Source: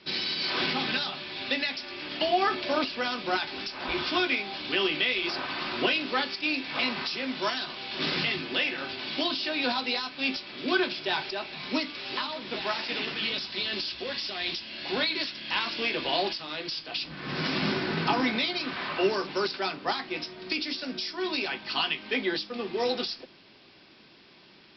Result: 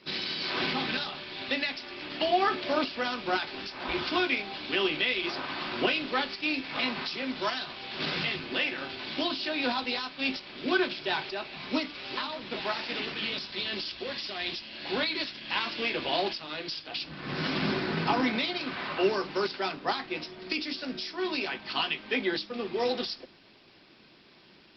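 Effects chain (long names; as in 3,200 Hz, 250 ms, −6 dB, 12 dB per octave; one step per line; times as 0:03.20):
0:07.43–0:08.46: dynamic equaliser 300 Hz, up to −4 dB, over −46 dBFS, Q 1.6
Opus 20 kbit/s 48,000 Hz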